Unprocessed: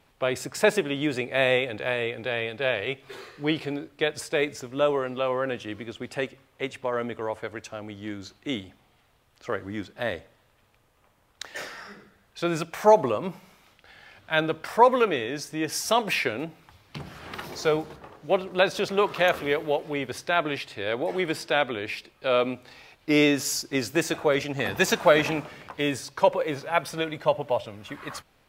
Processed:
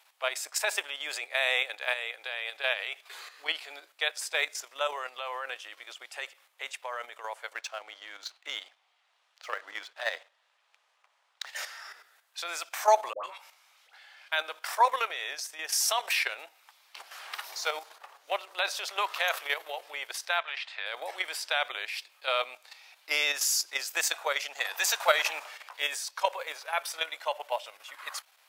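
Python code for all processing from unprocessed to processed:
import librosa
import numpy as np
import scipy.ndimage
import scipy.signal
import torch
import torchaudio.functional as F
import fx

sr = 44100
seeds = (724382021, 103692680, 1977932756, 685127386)

y = fx.chain(x, sr, fx.lowpass(hz=5000.0, slope=12),
    fx.leveller(passes=1), at=(7.55, 11.5))
y = fx.chain(y, sr, fx.high_shelf(hz=9700.0, db=-9.0),
    fx.doubler(ms=21.0, db=-11.5),
    fx.dispersion(late='highs', ms=108.0, hz=900.0), at=(13.13, 14.32))
y = fx.chain(y, sr, fx.lowpass(hz=3400.0, slope=12),
    fx.peak_eq(hz=290.0, db=-15.0, octaves=1.6),
    fx.band_squash(depth_pct=70), at=(20.39, 20.86))
y = scipy.signal.sosfilt(scipy.signal.butter(4, 700.0, 'highpass', fs=sr, output='sos'), y)
y = fx.high_shelf(y, sr, hz=3400.0, db=9.0)
y = fx.level_steps(y, sr, step_db=9)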